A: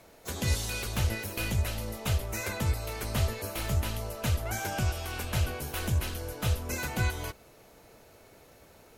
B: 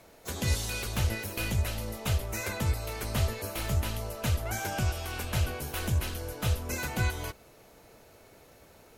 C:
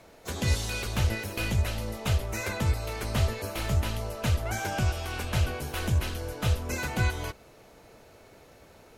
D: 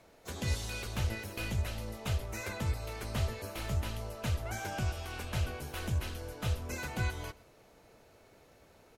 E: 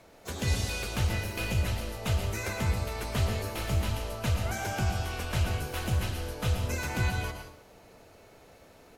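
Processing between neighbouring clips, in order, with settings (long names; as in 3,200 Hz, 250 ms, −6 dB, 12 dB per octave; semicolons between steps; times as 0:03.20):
no processing that can be heard
high-shelf EQ 10,000 Hz −10 dB; level +2.5 dB
single-tap delay 128 ms −22.5 dB; level −7 dB
dense smooth reverb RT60 0.57 s, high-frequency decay 0.9×, pre-delay 100 ms, DRR 4.5 dB; level +4.5 dB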